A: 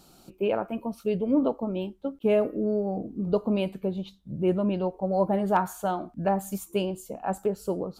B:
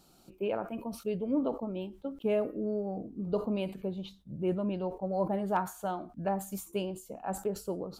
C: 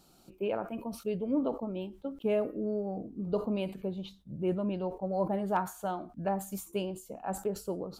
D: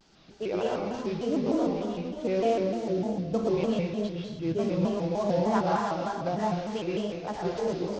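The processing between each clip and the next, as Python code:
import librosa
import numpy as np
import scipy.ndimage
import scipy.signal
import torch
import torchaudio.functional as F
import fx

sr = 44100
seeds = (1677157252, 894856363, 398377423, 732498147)

y1 = fx.sustainer(x, sr, db_per_s=150.0)
y1 = F.gain(torch.from_numpy(y1), -6.5).numpy()
y2 = y1
y3 = fx.cvsd(y2, sr, bps=32000)
y3 = fx.rev_plate(y3, sr, seeds[0], rt60_s=1.4, hf_ratio=0.9, predelay_ms=105, drr_db=-4.0)
y3 = fx.vibrato_shape(y3, sr, shape='square', rate_hz=3.3, depth_cents=160.0)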